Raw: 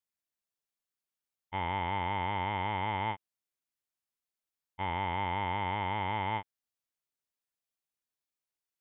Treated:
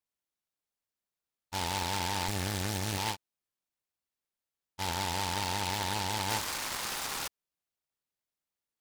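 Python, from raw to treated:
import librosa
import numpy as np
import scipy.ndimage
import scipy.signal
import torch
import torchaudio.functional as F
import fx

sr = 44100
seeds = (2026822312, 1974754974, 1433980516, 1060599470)

y = fx.lower_of_two(x, sr, delay_ms=0.45, at=(2.28, 2.98))
y = fx.spec_paint(y, sr, seeds[0], shape='noise', start_s=6.29, length_s=0.99, low_hz=770.0, high_hz=3000.0, level_db=-36.0)
y = fx.noise_mod_delay(y, sr, seeds[1], noise_hz=3000.0, depth_ms=0.14)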